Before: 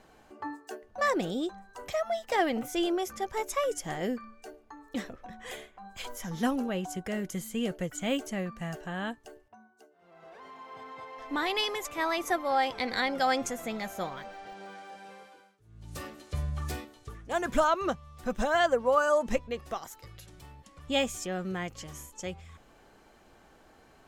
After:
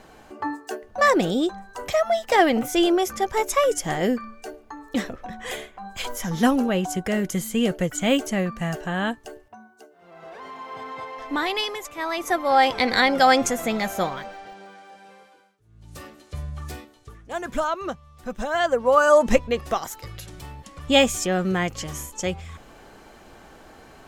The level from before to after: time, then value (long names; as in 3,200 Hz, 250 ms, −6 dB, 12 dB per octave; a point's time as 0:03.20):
0:11.02 +9.5 dB
0:11.95 0 dB
0:12.65 +10.5 dB
0:14.01 +10.5 dB
0:14.72 0 dB
0:18.42 0 dB
0:19.21 +11 dB